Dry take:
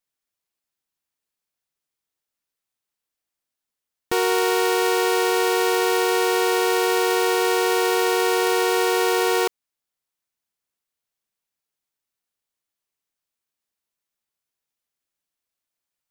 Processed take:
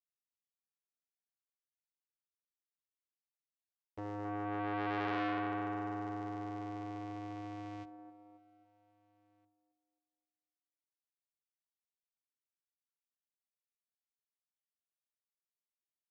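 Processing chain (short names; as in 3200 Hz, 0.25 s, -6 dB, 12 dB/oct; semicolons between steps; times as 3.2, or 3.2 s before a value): Doppler pass-by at 5.02, 12 m/s, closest 1.6 m; notches 60/120/180/240/300/360/420 Hz; gate with hold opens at -36 dBFS; bell 5400 Hz +5 dB 1.6 oct; sample leveller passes 5; limiter -34.5 dBFS, peak gain reduction 28 dB; vocoder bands 4, square 103 Hz; air absorption 89 m; band-limited delay 0.269 s, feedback 43%, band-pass 470 Hz, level -8.5 dB; core saturation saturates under 1700 Hz; gain +8 dB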